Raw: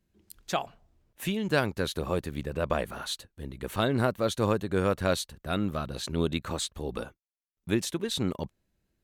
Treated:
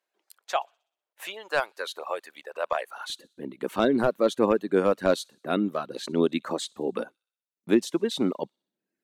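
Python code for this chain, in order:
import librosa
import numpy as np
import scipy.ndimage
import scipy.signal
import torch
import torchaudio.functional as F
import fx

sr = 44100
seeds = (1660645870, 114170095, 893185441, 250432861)

y = fx.highpass(x, sr, hz=fx.steps((0.0, 630.0), (3.1, 240.0)), slope=24)
y = np.clip(y, -10.0 ** (-17.0 / 20.0), 10.0 ** (-17.0 / 20.0))
y = fx.tilt_eq(y, sr, slope=-2.5)
y = fx.echo_wet_highpass(y, sr, ms=62, feedback_pct=57, hz=3500.0, wet_db=-15.0)
y = fx.dereverb_blind(y, sr, rt60_s=0.81)
y = y * librosa.db_to_amplitude(4.0)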